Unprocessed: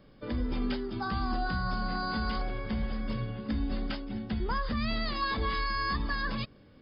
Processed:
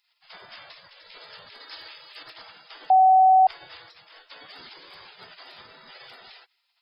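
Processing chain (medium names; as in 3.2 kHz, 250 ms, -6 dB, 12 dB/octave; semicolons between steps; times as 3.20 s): spectral gate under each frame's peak -30 dB weak; 1.60–2.23 s: treble shelf 2.3 kHz +7.5 dB; 2.90–3.47 s: bleep 755 Hz -18.5 dBFS; trim +6.5 dB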